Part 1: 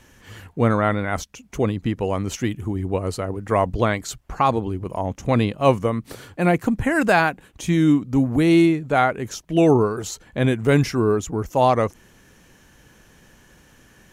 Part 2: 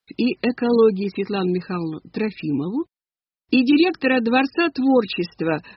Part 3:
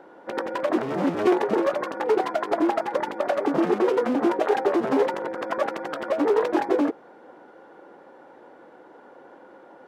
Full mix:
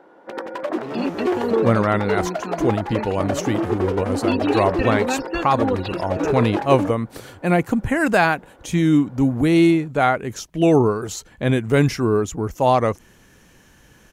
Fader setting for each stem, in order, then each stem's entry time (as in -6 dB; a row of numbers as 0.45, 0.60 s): +0.5, -7.0, -1.5 dB; 1.05, 0.75, 0.00 s